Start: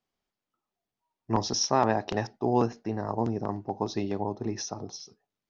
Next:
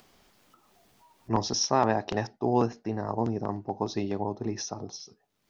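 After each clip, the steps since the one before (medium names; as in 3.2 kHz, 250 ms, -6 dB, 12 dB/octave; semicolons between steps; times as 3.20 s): upward compressor, threshold -41 dBFS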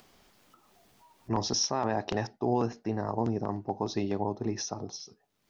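peak limiter -17 dBFS, peak gain reduction 8 dB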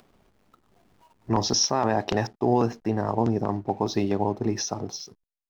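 hysteresis with a dead band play -53.5 dBFS; level rider gain up to 3.5 dB; trim +2.5 dB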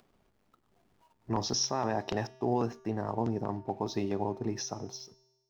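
feedback comb 130 Hz, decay 1.2 s, harmonics odd, mix 60%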